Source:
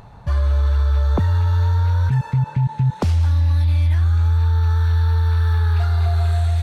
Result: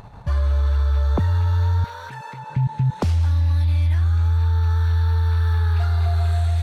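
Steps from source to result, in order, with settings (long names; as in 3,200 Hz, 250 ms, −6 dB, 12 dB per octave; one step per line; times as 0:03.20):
0:01.84–0:02.50: high-pass filter 430 Hz 12 dB per octave
in parallel at +1 dB: output level in coarse steps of 14 dB
on the sum: level −4 dB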